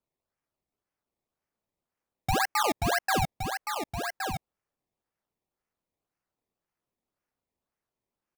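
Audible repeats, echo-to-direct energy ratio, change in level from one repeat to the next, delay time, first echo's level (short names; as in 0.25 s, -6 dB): 1, -6.5 dB, no steady repeat, 1.118 s, -6.5 dB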